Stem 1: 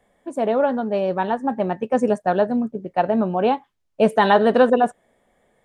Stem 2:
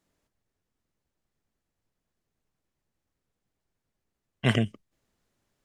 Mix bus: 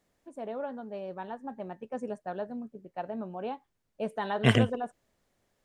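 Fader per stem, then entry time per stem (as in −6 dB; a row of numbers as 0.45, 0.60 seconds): −17.0, +1.0 decibels; 0.00, 0.00 seconds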